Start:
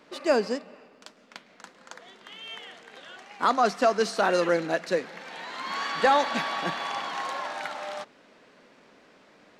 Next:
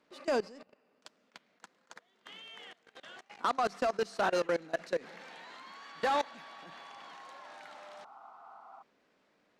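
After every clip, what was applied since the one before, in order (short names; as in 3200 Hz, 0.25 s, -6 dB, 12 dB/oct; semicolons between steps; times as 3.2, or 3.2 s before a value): added harmonics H 5 -21 dB, 8 -39 dB, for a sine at -11 dBFS; level quantiser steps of 22 dB; spectral repair 7.85–8.79, 640–1500 Hz before; gain -6 dB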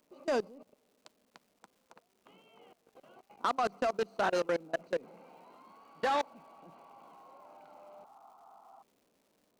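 Wiener smoothing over 25 samples; crackle 470/s -61 dBFS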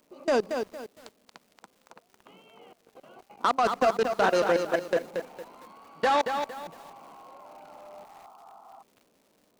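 lo-fi delay 0.229 s, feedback 35%, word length 9-bit, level -6 dB; gain +6.5 dB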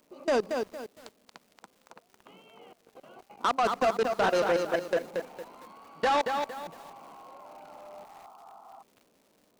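soft clip -18 dBFS, distortion -18 dB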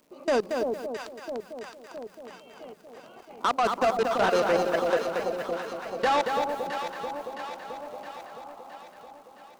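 echo with dull and thin repeats by turns 0.333 s, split 820 Hz, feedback 75%, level -5 dB; gain +1.5 dB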